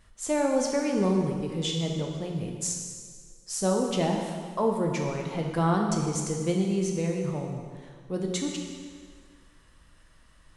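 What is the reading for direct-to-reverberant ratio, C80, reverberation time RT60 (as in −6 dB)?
1.0 dB, 4.5 dB, 1.8 s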